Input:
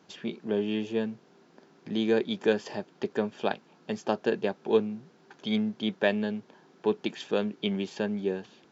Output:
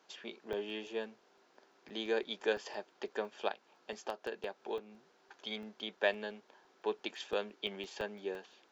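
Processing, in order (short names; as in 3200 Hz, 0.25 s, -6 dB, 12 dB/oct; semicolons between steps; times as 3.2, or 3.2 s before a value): HPF 510 Hz 12 dB/oct; 3.48–6.02 compressor 5:1, threshold -32 dBFS, peak gain reduction 10 dB; crackling interface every 0.17 s, samples 64, zero, from 0.53; gain -4 dB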